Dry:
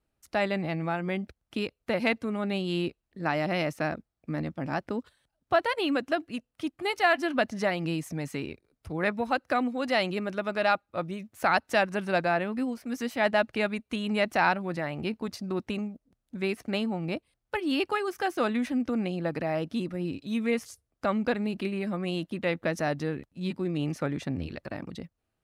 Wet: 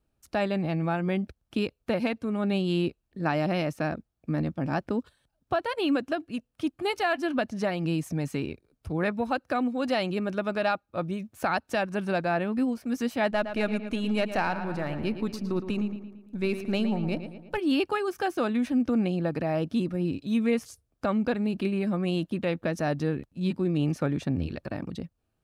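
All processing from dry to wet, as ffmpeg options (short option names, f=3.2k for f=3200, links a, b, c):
-filter_complex "[0:a]asettb=1/sr,asplit=3[a][b][c];[a]atrim=end=13.314[d];[b]atrim=start=13.31:end=17.58,asetpts=PTS-STARTPTS,afade=t=in:d=0.004:c=qsin,afade=t=out:st=4.266:d=0.004:c=qsin,aeval=exprs='if(lt(val(0),0),0.708*val(0),val(0))':c=same,asplit=2[e][f];[f]adelay=113,lowpass=f=4.1k:p=1,volume=-10dB,asplit=2[g][h];[h]adelay=113,lowpass=f=4.1k:p=1,volume=0.53,asplit=2[i][j];[j]adelay=113,lowpass=f=4.1k:p=1,volume=0.53,asplit=2[k][l];[l]adelay=113,lowpass=f=4.1k:p=1,volume=0.53,asplit=2[m][n];[n]adelay=113,lowpass=f=4.1k:p=1,volume=0.53,asplit=2[o][p];[p]adelay=113,lowpass=f=4.1k:p=1,volume=0.53[q];[e][g][i][k][m][o][q]amix=inputs=7:normalize=0,atrim=end_sample=188307[r];[c]atrim=start=17.576[s];[d][r]acrossfade=d=0.004:c1=hsin:c2=qsin[t];[t][s]acrossfade=d=0.004:c1=qsin:c2=hsin,lowshelf=f=410:g=5.5,bandreject=f=2k:w=11,alimiter=limit=-16dB:level=0:latency=1:release=408"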